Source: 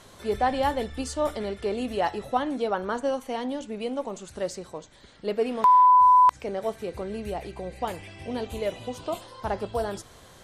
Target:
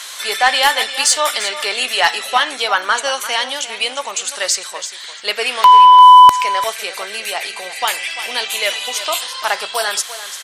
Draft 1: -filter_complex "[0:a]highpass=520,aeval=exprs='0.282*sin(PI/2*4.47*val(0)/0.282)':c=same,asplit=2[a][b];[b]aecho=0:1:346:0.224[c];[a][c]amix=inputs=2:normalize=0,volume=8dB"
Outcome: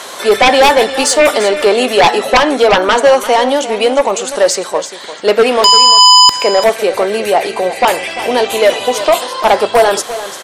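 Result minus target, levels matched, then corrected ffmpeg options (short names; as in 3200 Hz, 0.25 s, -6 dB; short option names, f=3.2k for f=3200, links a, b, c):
500 Hz band +13.0 dB
-filter_complex "[0:a]highpass=1.9k,aeval=exprs='0.282*sin(PI/2*4.47*val(0)/0.282)':c=same,asplit=2[a][b];[b]aecho=0:1:346:0.224[c];[a][c]amix=inputs=2:normalize=0,volume=8dB"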